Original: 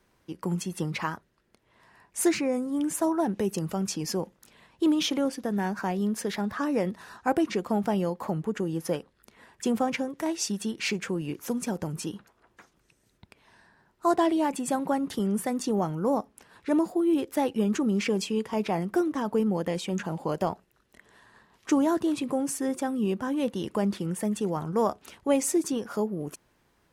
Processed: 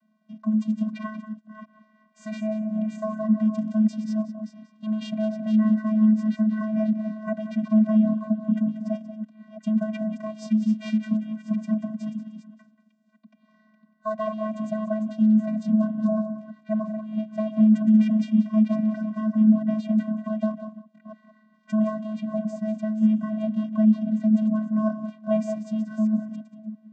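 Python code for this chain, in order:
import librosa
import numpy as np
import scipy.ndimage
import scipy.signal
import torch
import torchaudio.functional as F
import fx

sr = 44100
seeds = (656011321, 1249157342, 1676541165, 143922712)

y = fx.reverse_delay(x, sr, ms=330, wet_db=-9.0)
y = fx.air_absorb(y, sr, metres=59.0)
y = y + 10.0 ** (-13.0 / 20.0) * np.pad(y, (int(185 * sr / 1000.0), 0))[:len(y)]
y = fx.vocoder(y, sr, bands=16, carrier='square', carrier_hz=216.0)
y = y * 10.0 ** (5.0 / 20.0)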